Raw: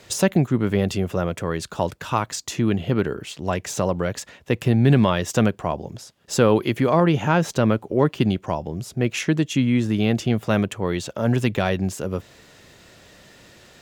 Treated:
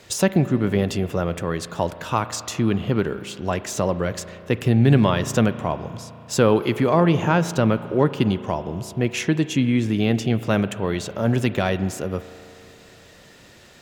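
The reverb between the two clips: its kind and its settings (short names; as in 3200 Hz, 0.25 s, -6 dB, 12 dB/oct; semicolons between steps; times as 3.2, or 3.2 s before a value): spring tank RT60 3 s, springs 35 ms, chirp 40 ms, DRR 12.5 dB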